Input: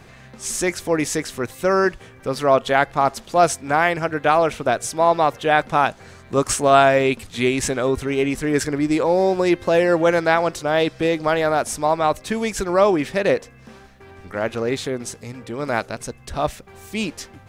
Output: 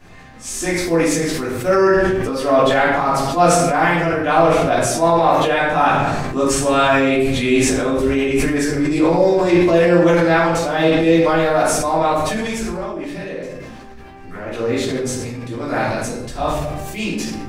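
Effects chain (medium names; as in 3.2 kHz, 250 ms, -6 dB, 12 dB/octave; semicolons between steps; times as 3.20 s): 12.49–14.47 s: compression 16:1, threshold -27 dBFS, peak gain reduction 17.5 dB; simulated room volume 180 m³, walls mixed, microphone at 3.1 m; decay stretcher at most 24 dB/s; trim -8.5 dB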